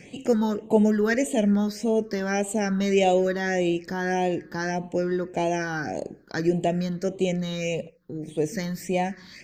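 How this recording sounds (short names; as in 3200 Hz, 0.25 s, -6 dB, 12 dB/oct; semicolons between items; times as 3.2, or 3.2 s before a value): phasing stages 6, 1.7 Hz, lowest notch 650–1500 Hz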